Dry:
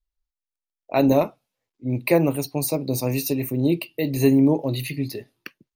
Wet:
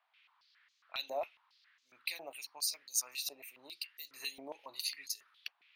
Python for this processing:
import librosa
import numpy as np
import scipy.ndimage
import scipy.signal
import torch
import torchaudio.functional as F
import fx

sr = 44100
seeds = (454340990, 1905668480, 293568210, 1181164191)

y = np.diff(x, prepend=0.0)
y = fx.rider(y, sr, range_db=4, speed_s=2.0)
y = fx.dmg_noise_band(y, sr, seeds[0], low_hz=930.0, high_hz=4300.0, level_db=-69.0)
y = fx.filter_held_bandpass(y, sr, hz=7.3, low_hz=700.0, high_hz=6600.0)
y = y * librosa.db_to_amplitude(7.5)